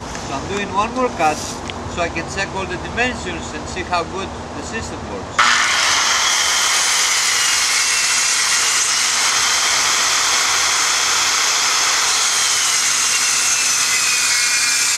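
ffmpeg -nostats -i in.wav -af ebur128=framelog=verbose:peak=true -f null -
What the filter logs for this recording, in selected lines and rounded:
Integrated loudness:
  I:         -14.3 LUFS
  Threshold: -24.8 LUFS
Loudness range:
  LRA:         9.0 LU
  Threshold: -34.7 LUFS
  LRA low:   -22.2 LUFS
  LRA high:  -13.2 LUFS
True peak:
  Peak:       -2.1 dBFS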